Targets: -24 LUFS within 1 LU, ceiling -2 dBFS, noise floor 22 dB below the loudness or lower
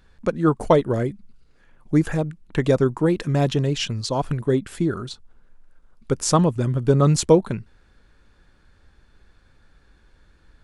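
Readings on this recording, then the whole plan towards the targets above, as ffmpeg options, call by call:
loudness -21.5 LUFS; peak -3.0 dBFS; loudness target -24.0 LUFS
-> -af "volume=-2.5dB"

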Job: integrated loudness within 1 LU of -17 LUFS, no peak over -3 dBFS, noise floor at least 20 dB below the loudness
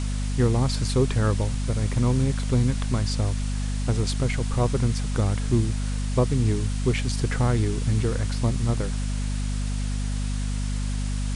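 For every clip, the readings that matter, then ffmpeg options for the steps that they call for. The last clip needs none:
hum 50 Hz; harmonics up to 250 Hz; hum level -24 dBFS; noise floor -27 dBFS; noise floor target -46 dBFS; loudness -25.5 LUFS; peak -10.0 dBFS; loudness target -17.0 LUFS
-> -af "bandreject=f=50:t=h:w=6,bandreject=f=100:t=h:w=6,bandreject=f=150:t=h:w=6,bandreject=f=200:t=h:w=6,bandreject=f=250:t=h:w=6"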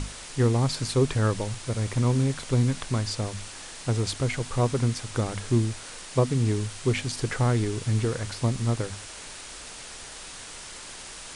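hum none; noise floor -42 dBFS; noise floor target -47 dBFS
-> -af "afftdn=nr=6:nf=-42"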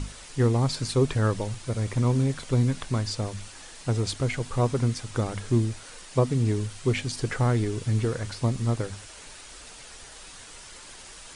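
noise floor -46 dBFS; noise floor target -47 dBFS
-> -af "afftdn=nr=6:nf=-46"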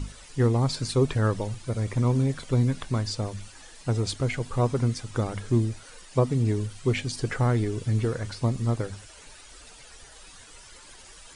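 noise floor -49 dBFS; loudness -27.0 LUFS; peak -11.0 dBFS; loudness target -17.0 LUFS
-> -af "volume=10dB,alimiter=limit=-3dB:level=0:latency=1"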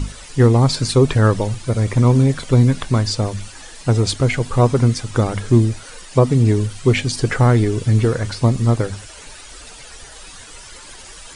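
loudness -17.0 LUFS; peak -3.0 dBFS; noise floor -39 dBFS

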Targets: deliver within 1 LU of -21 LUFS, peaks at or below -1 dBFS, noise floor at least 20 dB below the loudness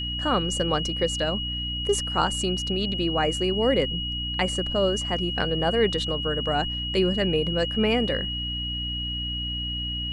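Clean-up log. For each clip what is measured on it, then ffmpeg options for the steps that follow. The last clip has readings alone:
hum 60 Hz; harmonics up to 300 Hz; hum level -31 dBFS; steady tone 2900 Hz; tone level -29 dBFS; loudness -25.0 LUFS; peak -9.0 dBFS; loudness target -21.0 LUFS
-> -af "bandreject=f=60:t=h:w=4,bandreject=f=120:t=h:w=4,bandreject=f=180:t=h:w=4,bandreject=f=240:t=h:w=4,bandreject=f=300:t=h:w=4"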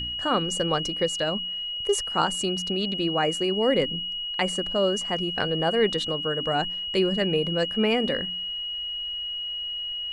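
hum none; steady tone 2900 Hz; tone level -29 dBFS
-> -af "bandreject=f=2.9k:w=30"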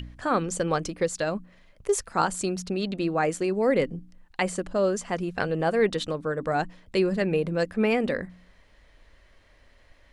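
steady tone none; loudness -27.0 LUFS; peak -9.0 dBFS; loudness target -21.0 LUFS
-> -af "volume=6dB"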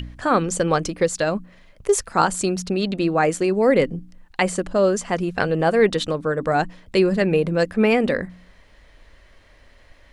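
loudness -21.0 LUFS; peak -3.0 dBFS; noise floor -52 dBFS

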